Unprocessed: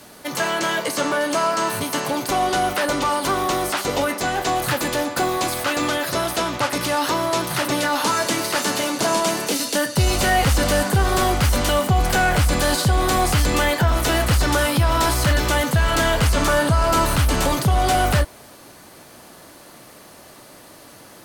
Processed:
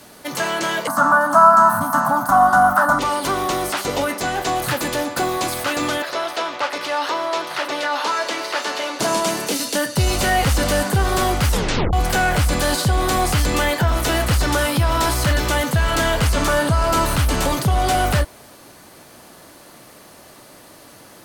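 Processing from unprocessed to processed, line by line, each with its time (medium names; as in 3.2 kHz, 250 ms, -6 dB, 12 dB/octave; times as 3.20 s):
0.87–2.99 s: FFT filter 120 Hz 0 dB, 240 Hz +9 dB, 430 Hz -25 dB, 630 Hz +6 dB, 1.4 kHz +14 dB, 2.3 kHz -19 dB, 3.8 kHz -14 dB, 13 kHz +2 dB
6.02–9.00 s: three-band isolator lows -23 dB, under 350 Hz, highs -15 dB, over 5.5 kHz
11.50 s: tape stop 0.43 s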